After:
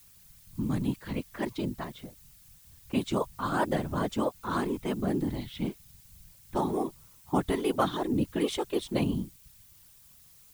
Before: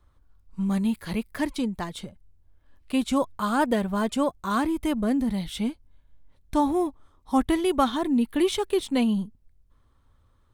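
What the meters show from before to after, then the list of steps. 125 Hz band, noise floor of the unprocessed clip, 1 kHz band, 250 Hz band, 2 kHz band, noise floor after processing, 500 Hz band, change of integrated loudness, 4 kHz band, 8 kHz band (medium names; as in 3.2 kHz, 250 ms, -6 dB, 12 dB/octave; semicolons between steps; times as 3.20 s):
+1.5 dB, -62 dBFS, -5.0 dB, -6.5 dB, -4.5 dB, -57 dBFS, -4.0 dB, -5.5 dB, -5.5 dB, -5.5 dB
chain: level-controlled noise filter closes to 1.5 kHz, open at -19.5 dBFS; added noise blue -52 dBFS; whisper effect; trim -5 dB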